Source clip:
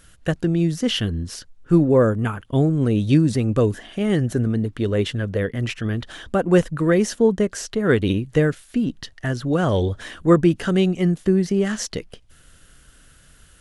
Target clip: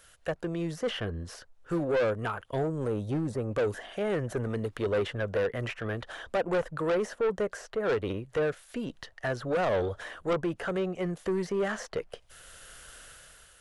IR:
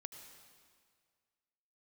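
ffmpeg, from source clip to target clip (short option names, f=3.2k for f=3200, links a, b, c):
-filter_complex "[0:a]acrossover=split=300|1900[a][b][c];[c]acompressor=threshold=-49dB:ratio=4[d];[a][b][d]amix=inputs=3:normalize=0,asettb=1/sr,asplit=3[e][f][g];[e]atrim=end=2.634[h];[f]atrim=start=2.63:end=3.51,asetpts=PTS-STARTPTS,afade=t=in:d=0.004:c=qsin,afade=t=out:st=0.876:d=0.004:c=qsin,equalizer=f=2.9k:w=0.6:g=-9.5[i];[g]atrim=start=3.506[j];[h][i]acrossfade=d=0.004:c1=hsin:c2=qsin[k];[k][j]acrossfade=d=0.004:c1=qsin:c2=hsin,asplit=2[l][m];[m]asoftclip=type=hard:threshold=-12dB,volume=-6dB[n];[l][n]amix=inputs=2:normalize=0,dynaudnorm=f=190:g=7:m=10dB,lowshelf=f=380:t=q:w=1.5:g=-10.5,asoftclip=type=tanh:threshold=-16dB,volume=-7dB"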